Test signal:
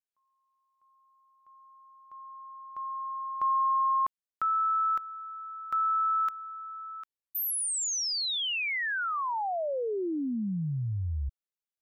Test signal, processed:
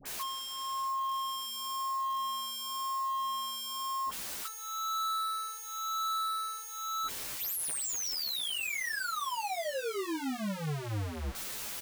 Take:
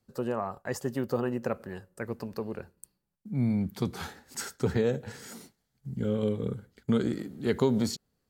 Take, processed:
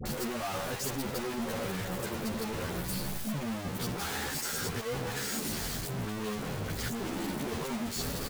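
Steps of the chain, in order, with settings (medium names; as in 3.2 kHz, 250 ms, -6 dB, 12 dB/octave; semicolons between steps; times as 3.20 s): one-bit comparator; phase dispersion highs, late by 56 ms, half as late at 1 kHz; endless flanger 11.6 ms +0.95 Hz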